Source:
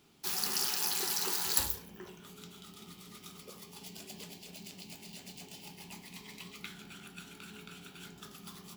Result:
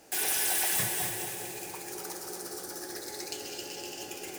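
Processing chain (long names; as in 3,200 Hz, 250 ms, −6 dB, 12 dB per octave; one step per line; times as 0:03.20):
feedback delay with all-pass diffusion 490 ms, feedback 54%, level −6 dB
wrong playback speed 7.5 ips tape played at 15 ips
hard clipping −32.5 dBFS, distortion −10 dB
level +8.5 dB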